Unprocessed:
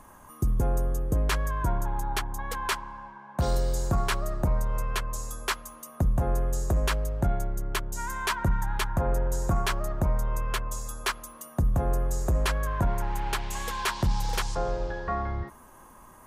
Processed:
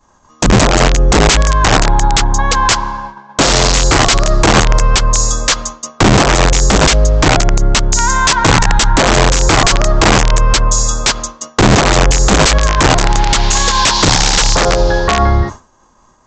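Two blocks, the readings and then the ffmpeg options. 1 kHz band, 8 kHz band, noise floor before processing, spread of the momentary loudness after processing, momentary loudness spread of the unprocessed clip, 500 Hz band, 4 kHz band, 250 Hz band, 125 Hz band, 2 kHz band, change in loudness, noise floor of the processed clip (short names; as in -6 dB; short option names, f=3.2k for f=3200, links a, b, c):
+19.5 dB, +25.0 dB, -51 dBFS, 4 LU, 6 LU, +19.0 dB, +24.0 dB, +19.5 dB, +15.0 dB, +20.5 dB, +18.5 dB, -49 dBFS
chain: -af "highshelf=f=3.3k:t=q:w=1.5:g=6.5,bandreject=f=47.87:t=h:w=4,bandreject=f=95.74:t=h:w=4,bandreject=f=143.61:t=h:w=4,bandreject=f=191.48:t=h:w=4,bandreject=f=239.35:t=h:w=4,bandreject=f=287.22:t=h:w=4,aresample=16000,aeval=exprs='(mod(11.2*val(0)+1,2)-1)/11.2':c=same,aresample=44100,agate=range=-33dB:threshold=-38dB:ratio=3:detection=peak,alimiter=level_in=22.5dB:limit=-1dB:release=50:level=0:latency=1,volume=-1dB"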